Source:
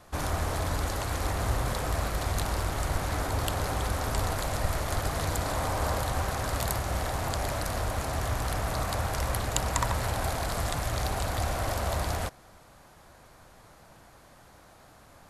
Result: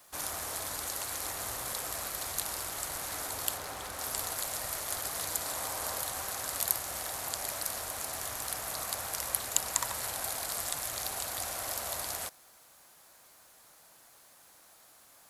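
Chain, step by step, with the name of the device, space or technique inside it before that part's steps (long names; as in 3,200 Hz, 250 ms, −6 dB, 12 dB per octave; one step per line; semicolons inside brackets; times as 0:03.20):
0:03.57–0:03.99: high-shelf EQ 5,300 Hz −9.5 dB
turntable without a phono preamp (RIAA equalisation recording; white noise bed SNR 30 dB)
level −8 dB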